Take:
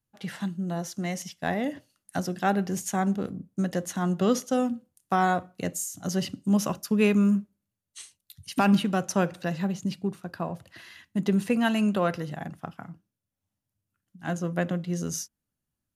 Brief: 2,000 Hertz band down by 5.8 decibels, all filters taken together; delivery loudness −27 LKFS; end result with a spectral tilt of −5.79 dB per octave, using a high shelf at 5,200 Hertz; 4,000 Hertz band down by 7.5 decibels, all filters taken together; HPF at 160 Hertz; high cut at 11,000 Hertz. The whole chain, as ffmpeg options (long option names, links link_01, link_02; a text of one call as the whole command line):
ffmpeg -i in.wav -af "highpass=160,lowpass=11000,equalizer=frequency=2000:width_type=o:gain=-6.5,equalizer=frequency=4000:width_type=o:gain=-6.5,highshelf=frequency=5200:gain=-3.5,volume=2.5dB" out.wav